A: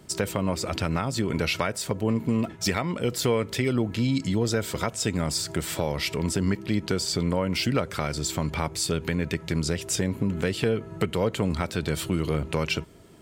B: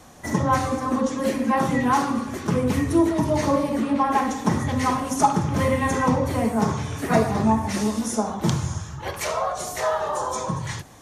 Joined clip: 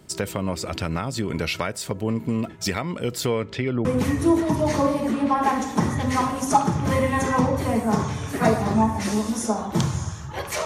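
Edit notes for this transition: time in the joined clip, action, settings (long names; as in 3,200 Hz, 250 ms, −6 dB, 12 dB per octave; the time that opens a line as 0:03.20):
A
0:03.26–0:03.85: low-pass filter 9,500 Hz → 1,600 Hz
0:03.85: continue with B from 0:02.54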